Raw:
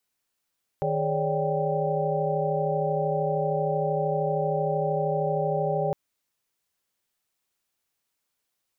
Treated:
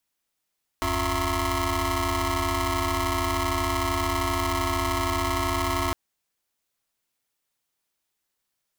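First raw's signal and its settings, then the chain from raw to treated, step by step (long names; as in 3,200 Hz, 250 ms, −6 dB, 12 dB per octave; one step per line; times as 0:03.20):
held notes D#3/G#4/C#5/D5/G5 sine, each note −29.5 dBFS 5.11 s
ring modulator with a square carrier 510 Hz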